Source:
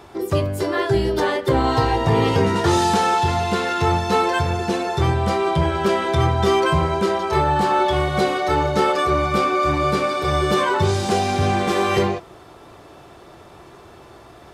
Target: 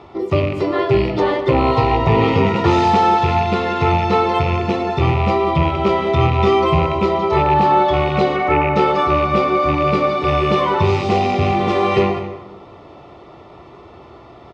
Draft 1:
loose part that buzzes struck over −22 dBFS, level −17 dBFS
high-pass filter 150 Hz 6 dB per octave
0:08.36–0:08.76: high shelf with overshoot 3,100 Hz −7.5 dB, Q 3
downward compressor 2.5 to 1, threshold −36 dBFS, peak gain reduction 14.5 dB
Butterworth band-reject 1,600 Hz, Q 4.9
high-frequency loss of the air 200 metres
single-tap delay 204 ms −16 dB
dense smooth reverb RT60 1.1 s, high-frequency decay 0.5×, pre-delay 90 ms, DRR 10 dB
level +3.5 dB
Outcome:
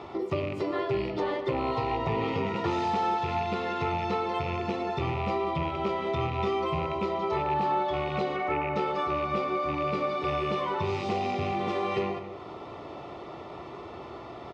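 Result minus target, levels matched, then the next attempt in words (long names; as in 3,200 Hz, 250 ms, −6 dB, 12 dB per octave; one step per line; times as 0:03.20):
downward compressor: peak gain reduction +14.5 dB; 125 Hz band −3.0 dB
loose part that buzzes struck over −22 dBFS, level −17 dBFS
high-pass filter 46 Hz 6 dB per octave
0:08.36–0:08.76: high shelf with overshoot 3,100 Hz −7.5 dB, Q 3
Butterworth band-reject 1,600 Hz, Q 4.9
high-frequency loss of the air 200 metres
single-tap delay 204 ms −16 dB
dense smooth reverb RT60 1.1 s, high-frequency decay 0.5×, pre-delay 90 ms, DRR 10 dB
level +3.5 dB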